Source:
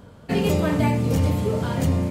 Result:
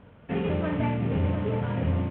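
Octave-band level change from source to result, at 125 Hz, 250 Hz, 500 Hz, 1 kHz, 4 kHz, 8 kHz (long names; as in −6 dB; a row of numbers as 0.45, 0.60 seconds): −5.0 dB, −5.5 dB, −6.0 dB, −5.5 dB, −10.5 dB, below −40 dB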